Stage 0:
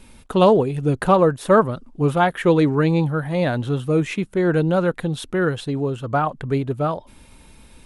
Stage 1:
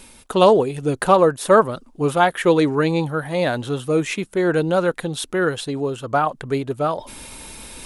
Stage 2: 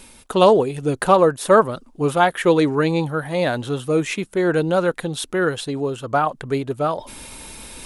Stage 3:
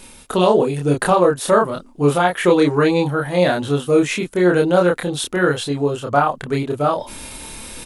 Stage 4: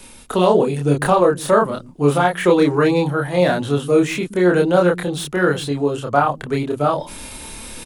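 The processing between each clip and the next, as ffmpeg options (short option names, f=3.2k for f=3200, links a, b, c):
-af "bass=f=250:g=-8,treble=f=4k:g=6,areverse,acompressor=mode=upward:threshold=-29dB:ratio=2.5,areverse,volume=2dB"
-af anull
-filter_complex "[0:a]alimiter=limit=-7.5dB:level=0:latency=1:release=192,asplit=2[a][b];[b]adelay=28,volume=-2dB[c];[a][c]amix=inputs=2:normalize=0,volume=1.5dB"
-filter_complex "[0:a]acrossover=split=260|420|2000[a][b][c][d];[a]aecho=1:1:126:0.447[e];[d]asoftclip=type=tanh:threshold=-23.5dB[f];[e][b][c][f]amix=inputs=4:normalize=0"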